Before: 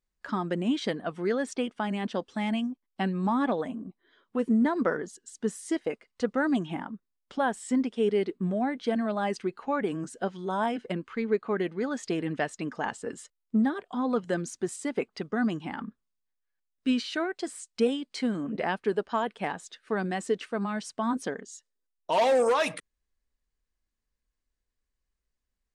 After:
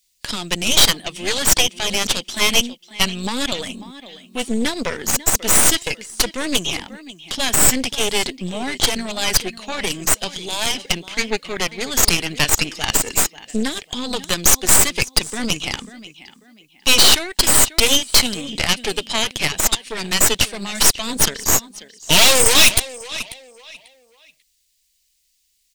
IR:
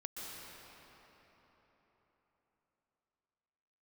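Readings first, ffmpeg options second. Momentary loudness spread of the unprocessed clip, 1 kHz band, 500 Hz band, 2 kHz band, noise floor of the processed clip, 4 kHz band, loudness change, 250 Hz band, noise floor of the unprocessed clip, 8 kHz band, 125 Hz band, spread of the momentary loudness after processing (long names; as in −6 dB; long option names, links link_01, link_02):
10 LU, +5.5 dB, +2.5 dB, +14.0 dB, −65 dBFS, +25.0 dB, +13.0 dB, +1.0 dB, −82 dBFS, +29.0 dB, +7.5 dB, 15 LU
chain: -filter_complex "[0:a]asplit=2[link_01][link_02];[link_02]adelay=542,lowpass=frequency=4400:poles=1,volume=-15dB,asplit=2[link_03][link_04];[link_04]adelay=542,lowpass=frequency=4400:poles=1,volume=0.32,asplit=2[link_05][link_06];[link_06]adelay=542,lowpass=frequency=4400:poles=1,volume=0.32[link_07];[link_01][link_03][link_05][link_07]amix=inputs=4:normalize=0,acrossover=split=120[link_08][link_09];[link_09]aexciter=amount=12.8:drive=7.1:freq=2200[link_10];[link_08][link_10]amix=inputs=2:normalize=0,apsyclip=7dB,aeval=exprs='1.06*(cos(1*acos(clip(val(0)/1.06,-1,1)))-cos(1*PI/2))+0.473*(cos(4*acos(clip(val(0)/1.06,-1,1)))-cos(4*PI/2))':channel_layout=same,volume=-6dB"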